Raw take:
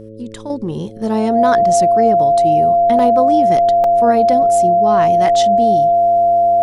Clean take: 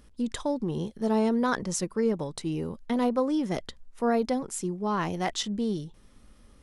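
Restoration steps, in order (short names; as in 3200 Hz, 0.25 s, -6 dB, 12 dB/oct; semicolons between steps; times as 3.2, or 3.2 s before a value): de-hum 109.3 Hz, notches 5; notch 690 Hz, Q 30; interpolate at 2.99/3.84, 2.6 ms; gain 0 dB, from 0.5 s -7.5 dB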